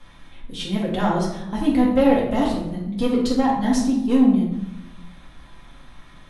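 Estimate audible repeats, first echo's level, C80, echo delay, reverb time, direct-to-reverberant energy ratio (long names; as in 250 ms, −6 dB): no echo audible, no echo audible, 6.0 dB, no echo audible, 0.90 s, −5.5 dB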